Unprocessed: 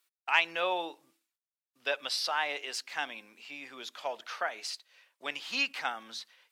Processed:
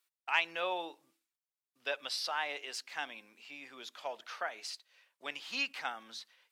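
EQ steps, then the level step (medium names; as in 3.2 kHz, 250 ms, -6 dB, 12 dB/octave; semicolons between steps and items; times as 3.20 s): flat; -4.5 dB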